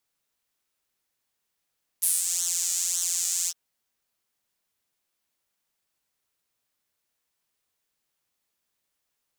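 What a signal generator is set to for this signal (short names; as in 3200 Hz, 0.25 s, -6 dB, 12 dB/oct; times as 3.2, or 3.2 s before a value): synth patch with pulse-width modulation F3, filter highpass, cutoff 5400 Hz, Q 3.5, filter envelope 1 oct, filter decay 0.29 s, attack 13 ms, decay 0.20 s, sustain -8 dB, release 0.05 s, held 1.46 s, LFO 1.8 Hz, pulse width 20%, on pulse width 13%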